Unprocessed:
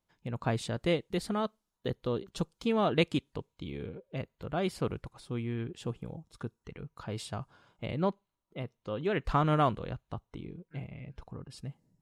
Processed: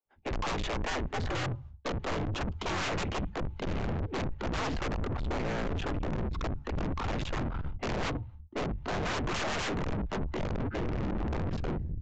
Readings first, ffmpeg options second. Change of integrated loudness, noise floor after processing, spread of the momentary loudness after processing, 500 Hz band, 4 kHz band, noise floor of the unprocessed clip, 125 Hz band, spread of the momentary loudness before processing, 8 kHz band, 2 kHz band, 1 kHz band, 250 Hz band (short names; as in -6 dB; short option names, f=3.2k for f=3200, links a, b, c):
0.0 dB, -49 dBFS, 4 LU, -2.0 dB, +3.0 dB, -85 dBFS, +1.5 dB, 17 LU, +5.5 dB, +5.0 dB, 0.0 dB, -0.5 dB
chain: -filter_complex "[0:a]asplit=2[a][b];[b]adynamicsmooth=sensitivity=6:basefreq=1.4k,volume=-2dB[c];[a][c]amix=inputs=2:normalize=0,agate=range=-33dB:threshold=-53dB:ratio=3:detection=peak,acrossover=split=410|3000[d][e][f];[d]acompressor=threshold=-37dB:ratio=10[g];[g][e][f]amix=inputs=3:normalize=0,afreqshift=-88,asubboost=boost=8:cutoff=160,acrossover=split=2900[h][i];[h]aeval=exprs='0.266*sin(PI/2*10*val(0)/0.266)':c=same[j];[j][i]amix=inputs=2:normalize=0,acrossover=split=270[k][l];[k]adelay=50[m];[m][l]amix=inputs=2:normalize=0,aeval=exprs='(tanh(35.5*val(0)+0.3)-tanh(0.3))/35.5':c=same,aresample=16000,aresample=44100,adynamicequalizer=threshold=0.00224:dfrequency=4800:dqfactor=1.1:tfrequency=4800:tqfactor=1.1:attack=5:release=100:ratio=0.375:range=2.5:mode=cutabove:tftype=bell"